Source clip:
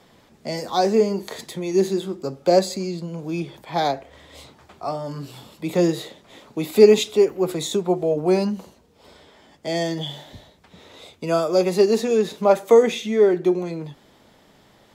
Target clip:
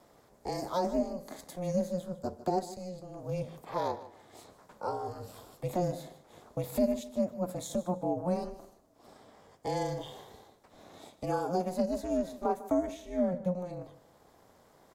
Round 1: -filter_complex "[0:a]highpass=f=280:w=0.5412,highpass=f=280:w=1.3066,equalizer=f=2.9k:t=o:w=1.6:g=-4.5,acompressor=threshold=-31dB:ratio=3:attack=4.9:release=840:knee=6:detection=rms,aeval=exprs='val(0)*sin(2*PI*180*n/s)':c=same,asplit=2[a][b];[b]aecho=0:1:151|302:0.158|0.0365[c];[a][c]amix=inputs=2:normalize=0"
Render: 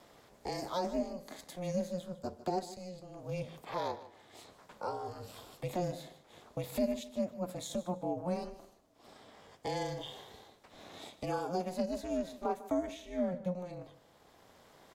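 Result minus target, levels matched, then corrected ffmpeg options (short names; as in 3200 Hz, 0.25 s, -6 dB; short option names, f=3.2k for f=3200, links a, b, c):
4000 Hz band +6.0 dB; compressor: peak gain reduction +4.5 dB
-filter_complex "[0:a]highpass=f=280:w=0.5412,highpass=f=280:w=1.3066,equalizer=f=2.9k:t=o:w=1.6:g=-13,acompressor=threshold=-24.5dB:ratio=3:attack=4.9:release=840:knee=6:detection=rms,aeval=exprs='val(0)*sin(2*PI*180*n/s)':c=same,asplit=2[a][b];[b]aecho=0:1:151|302:0.158|0.0365[c];[a][c]amix=inputs=2:normalize=0"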